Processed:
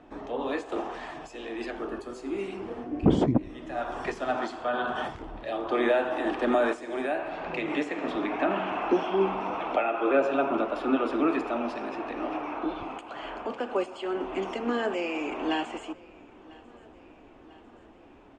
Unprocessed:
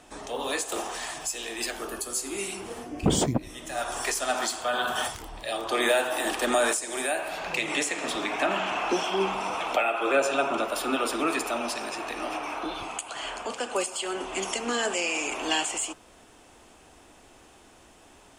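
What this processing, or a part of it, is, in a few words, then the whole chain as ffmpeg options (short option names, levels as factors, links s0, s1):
phone in a pocket: -af "lowpass=3200,equalizer=f=290:t=o:w=0.91:g=5.5,highshelf=f=2200:g=-10.5,aecho=1:1:996|1992|2988|3984:0.0668|0.0388|0.0225|0.013"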